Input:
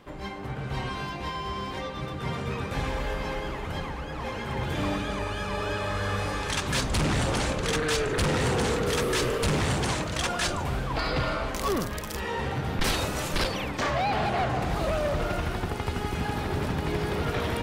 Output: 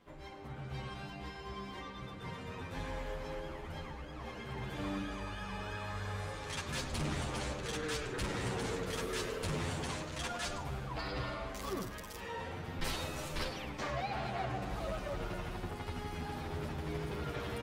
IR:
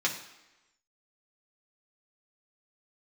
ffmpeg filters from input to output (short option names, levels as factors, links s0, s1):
-filter_complex "[0:a]asplit=2[s0][s1];[1:a]atrim=start_sample=2205,adelay=97[s2];[s1][s2]afir=irnorm=-1:irlink=0,volume=0.1[s3];[s0][s3]amix=inputs=2:normalize=0,asplit=2[s4][s5];[s5]adelay=9.3,afreqshift=-0.31[s6];[s4][s6]amix=inputs=2:normalize=1,volume=0.376"